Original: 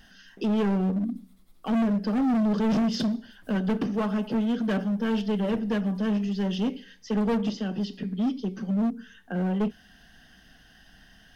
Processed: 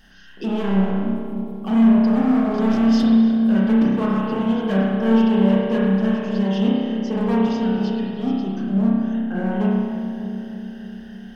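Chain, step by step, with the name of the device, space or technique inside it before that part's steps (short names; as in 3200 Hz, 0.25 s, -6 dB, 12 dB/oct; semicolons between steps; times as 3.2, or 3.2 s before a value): dub delay into a spring reverb (darkening echo 0.297 s, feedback 72%, low-pass 1000 Hz, level -8 dB; spring tank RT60 1.7 s, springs 31 ms, chirp 80 ms, DRR -5 dB)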